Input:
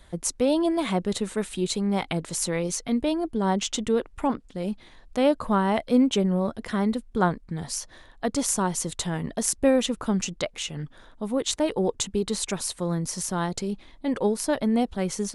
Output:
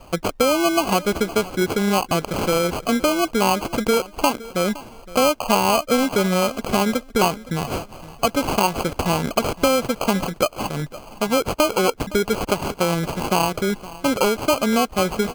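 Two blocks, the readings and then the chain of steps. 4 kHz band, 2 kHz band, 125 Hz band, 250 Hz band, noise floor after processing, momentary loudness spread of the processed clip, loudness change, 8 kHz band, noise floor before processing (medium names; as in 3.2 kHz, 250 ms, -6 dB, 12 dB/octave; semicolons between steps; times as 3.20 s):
+7.0 dB, +10.0 dB, +3.5 dB, +2.5 dB, -43 dBFS, 6 LU, +5.0 dB, +1.0 dB, -52 dBFS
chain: one-sided wavefolder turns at -18.5 dBFS; peaking EQ 740 Hz +12 dB 1.8 oct; compression 4:1, threshold -21 dBFS, peak gain reduction 12 dB; sample-and-hold 24×; feedback delay 515 ms, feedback 24%, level -18.5 dB; trim +5 dB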